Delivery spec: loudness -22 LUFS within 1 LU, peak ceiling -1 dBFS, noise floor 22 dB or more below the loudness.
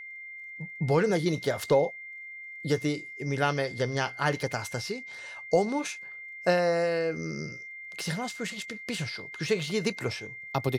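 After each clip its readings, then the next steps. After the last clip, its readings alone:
tick rate 19 per s; steady tone 2.1 kHz; tone level -40 dBFS; loudness -30.0 LUFS; peak level -13.0 dBFS; loudness target -22.0 LUFS
-> de-click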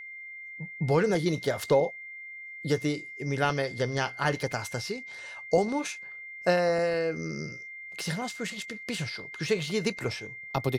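tick rate 0 per s; steady tone 2.1 kHz; tone level -40 dBFS
-> band-stop 2.1 kHz, Q 30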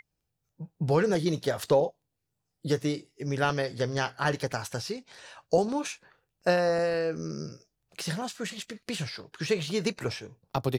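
steady tone not found; loudness -30.0 LUFS; peak level -13.5 dBFS; loudness target -22.0 LUFS
-> trim +8 dB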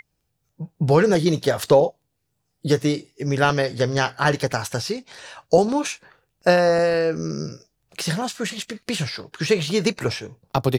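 loudness -22.0 LUFS; peak level -5.5 dBFS; noise floor -74 dBFS

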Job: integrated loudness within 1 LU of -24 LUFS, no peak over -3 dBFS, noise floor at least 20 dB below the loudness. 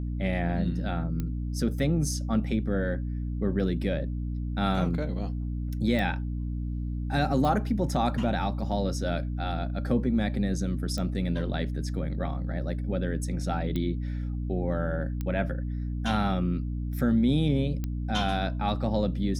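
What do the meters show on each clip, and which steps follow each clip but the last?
clicks found 7; hum 60 Hz; highest harmonic 300 Hz; hum level -29 dBFS; loudness -29.0 LUFS; peak level -13.0 dBFS; loudness target -24.0 LUFS
-> de-click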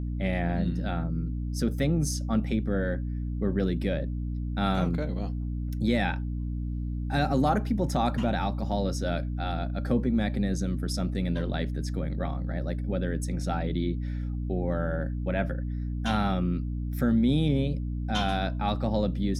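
clicks found 0; hum 60 Hz; highest harmonic 300 Hz; hum level -29 dBFS
-> hum notches 60/120/180/240/300 Hz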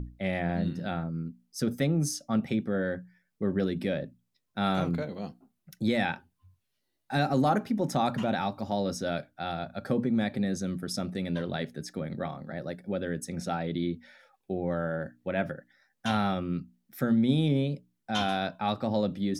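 hum not found; loudness -30.5 LUFS; peak level -13.5 dBFS; loudness target -24.0 LUFS
-> trim +6.5 dB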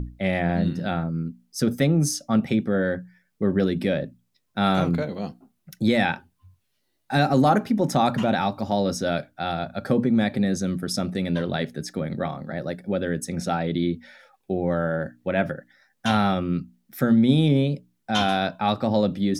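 loudness -24.0 LUFS; peak level -7.0 dBFS; noise floor -72 dBFS

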